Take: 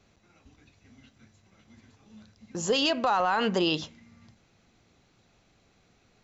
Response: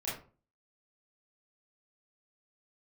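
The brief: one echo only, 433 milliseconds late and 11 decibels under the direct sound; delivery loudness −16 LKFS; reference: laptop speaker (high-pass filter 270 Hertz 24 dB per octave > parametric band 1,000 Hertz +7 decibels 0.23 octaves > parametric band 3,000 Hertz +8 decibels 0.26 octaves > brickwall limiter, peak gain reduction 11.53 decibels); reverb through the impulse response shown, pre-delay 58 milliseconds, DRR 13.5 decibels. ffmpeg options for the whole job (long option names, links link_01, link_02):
-filter_complex "[0:a]aecho=1:1:433:0.282,asplit=2[link_01][link_02];[1:a]atrim=start_sample=2205,adelay=58[link_03];[link_02][link_03]afir=irnorm=-1:irlink=0,volume=-17dB[link_04];[link_01][link_04]amix=inputs=2:normalize=0,highpass=frequency=270:width=0.5412,highpass=frequency=270:width=1.3066,equalizer=frequency=1000:width_type=o:width=0.23:gain=7,equalizer=frequency=3000:width_type=o:width=0.26:gain=8,volume=16.5dB,alimiter=limit=-7dB:level=0:latency=1"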